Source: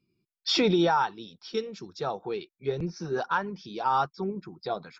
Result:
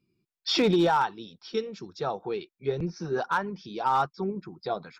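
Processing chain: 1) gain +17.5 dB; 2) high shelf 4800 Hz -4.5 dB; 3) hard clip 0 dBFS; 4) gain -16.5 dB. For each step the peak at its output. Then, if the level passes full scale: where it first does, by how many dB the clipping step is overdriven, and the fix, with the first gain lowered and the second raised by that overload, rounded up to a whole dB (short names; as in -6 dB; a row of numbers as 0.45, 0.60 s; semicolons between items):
+3.5, +3.5, 0.0, -16.5 dBFS; step 1, 3.5 dB; step 1 +13.5 dB, step 4 -12.5 dB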